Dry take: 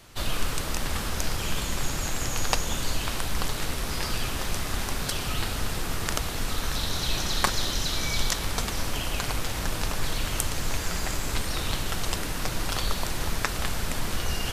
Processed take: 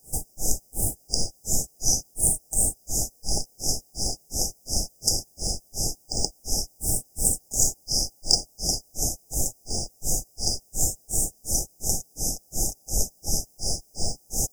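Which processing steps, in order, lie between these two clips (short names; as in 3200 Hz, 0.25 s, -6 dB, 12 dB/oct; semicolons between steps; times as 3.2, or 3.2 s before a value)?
resonant high shelf 4800 Hz +9 dB, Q 3; grains 0.251 s, grains 2.8/s, pitch spread up and down by 7 st; added noise white -61 dBFS; brick-wall FIR band-stop 850–4800 Hz; gain +3 dB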